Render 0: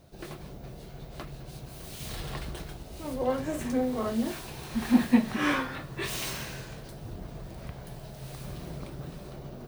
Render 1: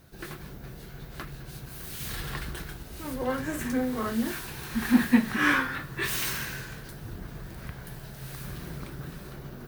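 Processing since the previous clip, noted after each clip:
graphic EQ with 15 bands 630 Hz −7 dB, 1,600 Hz +8 dB, 16,000 Hz +10 dB
level +1 dB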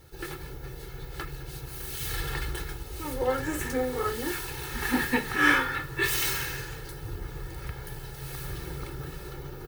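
comb filter 2.3 ms, depth 90%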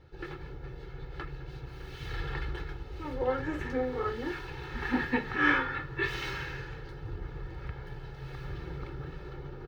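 high-frequency loss of the air 250 metres
level −2 dB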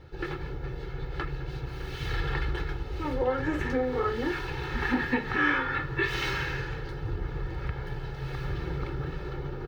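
downward compressor 2.5 to 1, threshold −32 dBFS, peak gain reduction 8.5 dB
level +7 dB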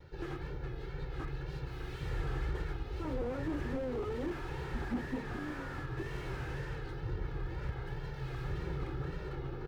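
tape wow and flutter 79 cents
slew-rate limiting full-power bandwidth 15 Hz
level −5 dB

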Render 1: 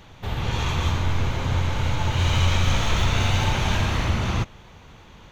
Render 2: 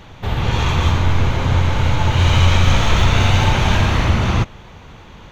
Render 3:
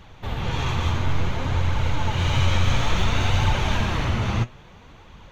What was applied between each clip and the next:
high-shelf EQ 4,600 Hz −5.5 dB; level +7.5 dB
flanger 0.58 Hz, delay 0.6 ms, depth 9.3 ms, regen +58%; level −3 dB

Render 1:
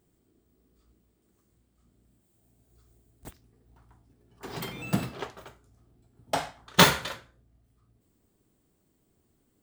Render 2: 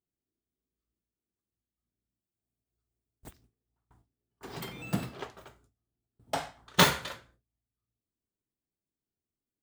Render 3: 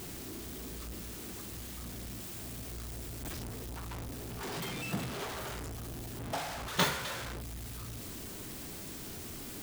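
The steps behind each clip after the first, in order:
noise gate with hold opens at −48 dBFS; level −4 dB
converter with a step at zero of −26 dBFS; level −8.5 dB

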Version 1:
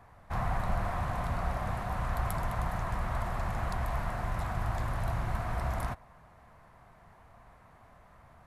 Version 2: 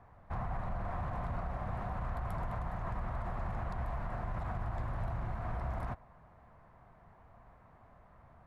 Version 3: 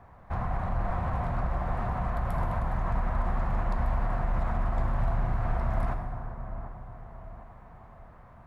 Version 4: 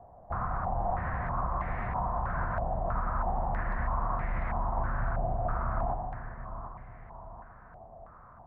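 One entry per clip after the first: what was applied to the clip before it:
low-pass filter 1,300 Hz 6 dB per octave; brickwall limiter −27.5 dBFS, peak gain reduction 8 dB; level −1.5 dB
delay with a low-pass on its return 748 ms, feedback 42%, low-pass 1,300 Hz, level −10 dB; dense smooth reverb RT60 2.3 s, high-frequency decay 0.6×, DRR 4.5 dB; level +5.5 dB
low-pass on a step sequencer 3.1 Hz 690–2,100 Hz; level −4.5 dB

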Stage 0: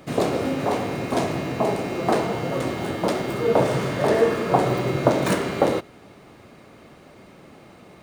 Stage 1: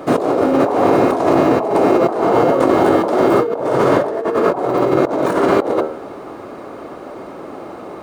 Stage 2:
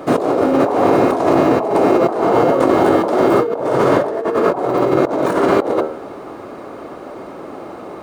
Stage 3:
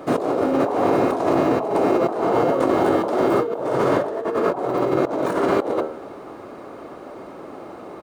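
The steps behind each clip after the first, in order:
flat-topped bell 620 Hz +12.5 dB 2.8 octaves; hum removal 77.24 Hz, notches 20; compressor whose output falls as the input rises −17 dBFS, ratio −1; level +1.5 dB
no processing that can be heard
single-tap delay 244 ms −23.5 dB; level −5.5 dB

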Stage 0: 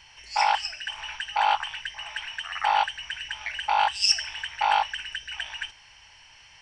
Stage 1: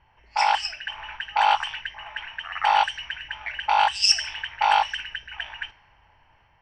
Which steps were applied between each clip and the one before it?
low-pass that shuts in the quiet parts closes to 910 Hz, open at −20.5 dBFS
automatic gain control gain up to 3 dB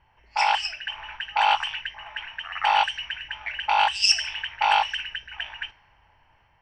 dynamic equaliser 2,700 Hz, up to +5 dB, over −39 dBFS, Q 2.5
level −1.5 dB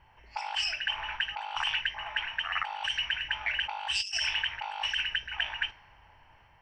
compressor whose output falls as the input rises −30 dBFS, ratio −1
level −2.5 dB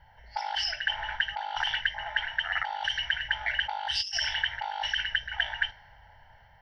phaser with its sweep stopped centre 1,700 Hz, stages 8
level +5 dB

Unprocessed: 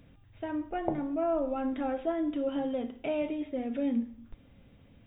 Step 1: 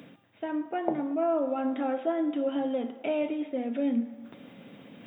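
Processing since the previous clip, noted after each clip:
high-pass filter 180 Hz 24 dB per octave
reversed playback
upward compression, threshold −40 dBFS
reversed playback
delay with a band-pass on its return 114 ms, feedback 69%, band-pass 1,000 Hz, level −15 dB
level +2.5 dB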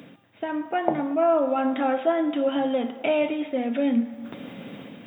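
automatic gain control gain up to 6.5 dB
dynamic equaliser 350 Hz, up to −7 dB, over −36 dBFS, Q 0.88
level +3.5 dB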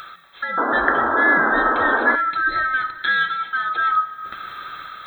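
neighbouring bands swapped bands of 1,000 Hz
sound drawn into the spectrogram noise, 0:00.57–0:02.16, 220–1,700 Hz −24 dBFS
one half of a high-frequency compander encoder only
level +3 dB

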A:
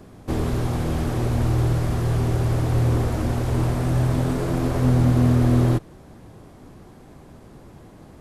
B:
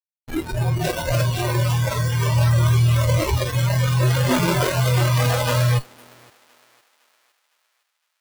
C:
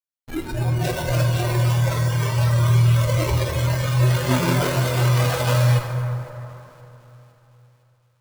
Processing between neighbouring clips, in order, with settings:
comparator with hysteresis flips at −28 dBFS; feedback echo with a high-pass in the loop 510 ms, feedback 53%, high-pass 750 Hz, level −5 dB; noise reduction from a noise print of the clip's start 21 dB; level +8 dB
convolution reverb RT60 3.4 s, pre-delay 48 ms, DRR 4.5 dB; level −2.5 dB

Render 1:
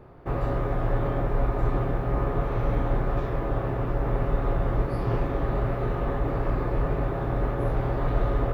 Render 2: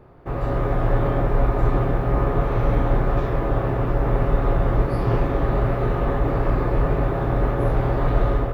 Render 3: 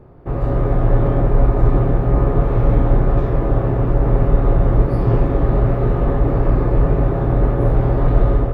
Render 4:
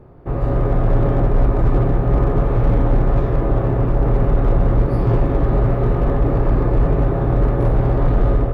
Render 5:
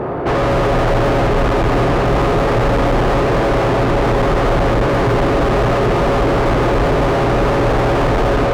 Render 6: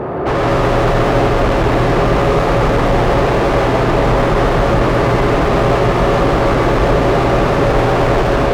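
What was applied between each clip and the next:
automatic gain control gain up to 5.5 dB
tilt shelving filter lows +5 dB, about 760 Hz; level +1 dB
hard clipping −9 dBFS, distortion −16 dB
mid-hump overdrive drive 41 dB, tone 1,600 Hz, clips at −8.5 dBFS
convolution reverb RT60 0.60 s, pre-delay 118 ms, DRR 2 dB

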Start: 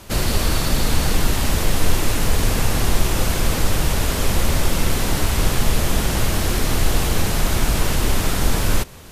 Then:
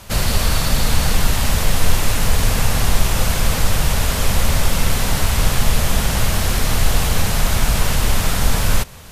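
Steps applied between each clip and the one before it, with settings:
parametric band 330 Hz −9.5 dB 0.71 octaves
level +2.5 dB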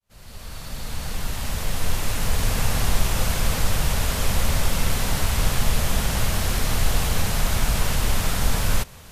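fade in at the beginning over 2.70 s
level −5 dB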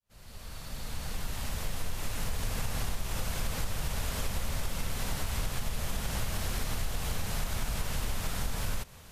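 downward compressor, threshold −20 dBFS, peak gain reduction 9 dB
level −7 dB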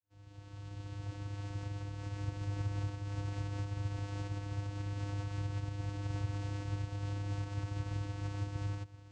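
channel vocoder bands 8, square 101 Hz
level +2 dB

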